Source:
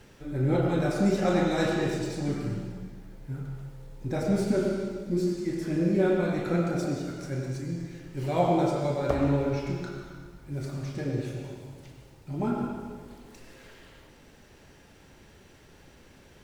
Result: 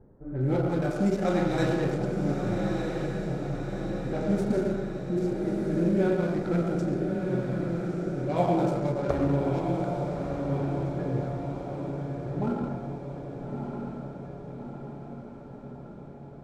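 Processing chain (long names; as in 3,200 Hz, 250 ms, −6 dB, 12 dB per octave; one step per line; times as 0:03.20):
adaptive Wiener filter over 15 samples
low-pass that shuts in the quiet parts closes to 650 Hz, open at −23 dBFS
feedback delay with all-pass diffusion 1,252 ms, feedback 60%, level −4.5 dB
level −1 dB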